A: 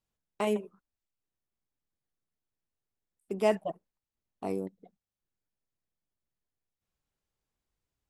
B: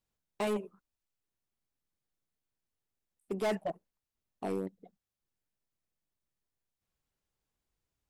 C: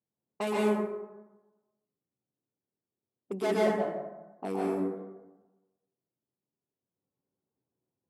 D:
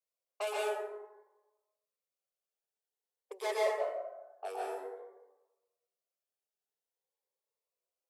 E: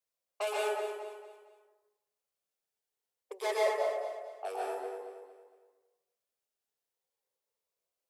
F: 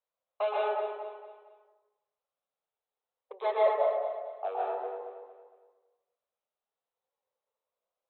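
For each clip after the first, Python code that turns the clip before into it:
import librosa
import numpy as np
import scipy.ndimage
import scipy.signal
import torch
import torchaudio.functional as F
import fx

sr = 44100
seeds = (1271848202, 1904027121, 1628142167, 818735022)

y1 = np.clip(x, -10.0 ** (-27.5 / 20.0), 10.0 ** (-27.5 / 20.0))
y2 = scipy.signal.sosfilt(scipy.signal.butter(4, 120.0, 'highpass', fs=sr, output='sos'), y1)
y2 = fx.env_lowpass(y2, sr, base_hz=550.0, full_db=-34.5)
y2 = fx.rev_plate(y2, sr, seeds[0], rt60_s=1.1, hf_ratio=0.45, predelay_ms=110, drr_db=-5.0)
y3 = scipy.signal.sosfilt(scipy.signal.butter(8, 460.0, 'highpass', fs=sr, output='sos'), y2)
y3 = fx.notch_cascade(y3, sr, direction='rising', hz=0.52)
y4 = fx.echo_feedback(y3, sr, ms=229, feedback_pct=37, wet_db=-10)
y4 = F.gain(torch.from_numpy(y4), 2.0).numpy()
y5 = fx.brickwall_lowpass(y4, sr, high_hz=4100.0)
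y5 = fx.band_shelf(y5, sr, hz=800.0, db=9.0, octaves=1.7)
y5 = fx.end_taper(y5, sr, db_per_s=280.0)
y5 = F.gain(torch.from_numpy(y5), -4.0).numpy()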